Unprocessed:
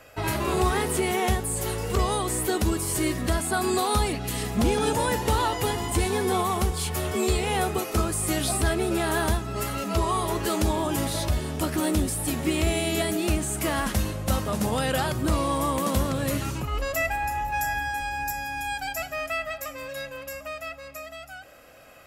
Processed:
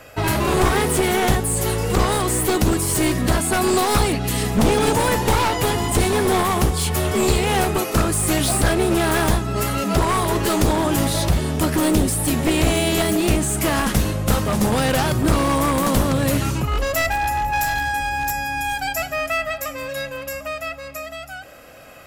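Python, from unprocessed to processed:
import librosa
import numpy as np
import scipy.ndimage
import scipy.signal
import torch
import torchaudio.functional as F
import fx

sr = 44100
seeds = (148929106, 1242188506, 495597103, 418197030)

y = np.minimum(x, 2.0 * 10.0 ** (-23.0 / 20.0) - x)
y = fx.peak_eq(y, sr, hz=160.0, db=2.5, octaves=1.8)
y = F.gain(torch.from_numpy(y), 7.0).numpy()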